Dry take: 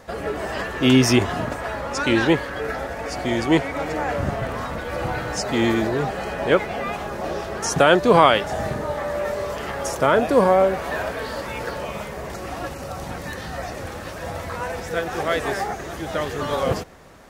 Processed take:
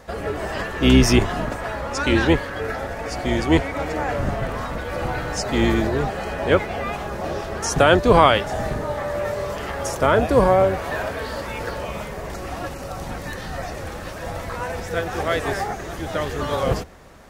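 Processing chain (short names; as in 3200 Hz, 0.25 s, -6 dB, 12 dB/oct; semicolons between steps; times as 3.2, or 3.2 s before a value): octaver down 2 oct, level -2 dB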